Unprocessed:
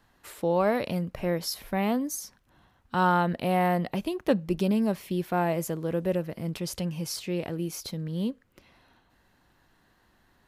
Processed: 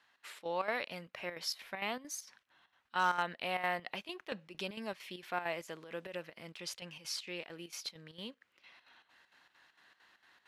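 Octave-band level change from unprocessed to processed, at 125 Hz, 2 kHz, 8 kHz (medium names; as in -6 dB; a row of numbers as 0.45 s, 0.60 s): -22.5 dB, -2.5 dB, -8.0 dB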